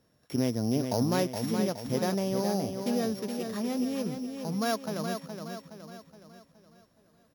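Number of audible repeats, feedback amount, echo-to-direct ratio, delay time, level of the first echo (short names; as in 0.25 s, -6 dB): 5, 47%, -5.5 dB, 0.419 s, -6.5 dB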